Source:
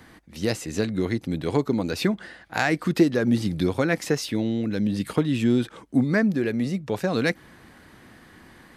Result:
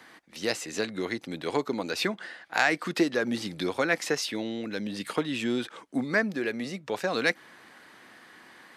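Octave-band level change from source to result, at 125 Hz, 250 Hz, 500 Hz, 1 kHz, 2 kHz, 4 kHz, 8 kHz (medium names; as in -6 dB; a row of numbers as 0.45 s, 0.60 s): -14.0 dB, -8.5 dB, -4.0 dB, -0.5 dB, +1.0 dB, +1.0 dB, -0.5 dB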